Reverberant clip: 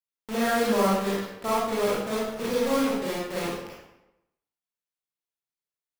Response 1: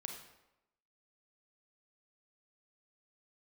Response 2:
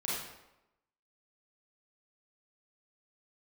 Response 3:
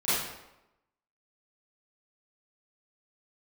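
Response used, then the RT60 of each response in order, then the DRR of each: 2; 0.95, 0.95, 0.95 seconds; 2.5, −7.5, −16.0 decibels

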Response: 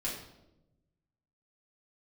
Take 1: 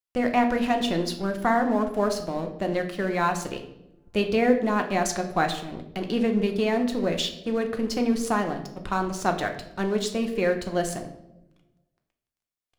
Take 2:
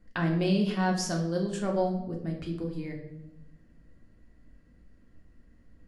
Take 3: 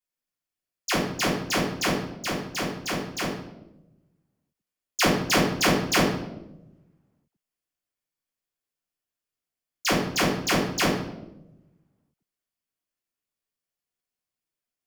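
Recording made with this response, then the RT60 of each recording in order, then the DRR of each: 3; 0.95, 0.95, 0.95 seconds; 4.5, 0.0, −6.5 decibels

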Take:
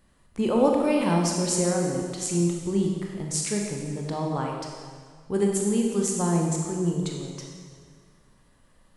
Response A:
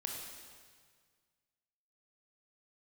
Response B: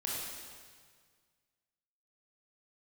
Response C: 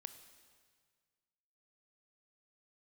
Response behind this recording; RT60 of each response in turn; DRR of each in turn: A; 1.8, 1.8, 1.8 seconds; 0.0, −5.0, 10.0 decibels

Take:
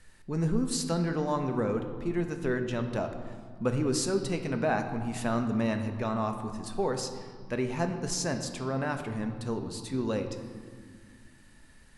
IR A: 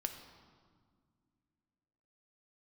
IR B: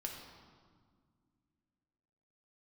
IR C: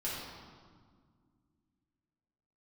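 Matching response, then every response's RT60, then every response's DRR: A; non-exponential decay, 1.9 s, 1.8 s; 5.5, 0.5, −8.0 decibels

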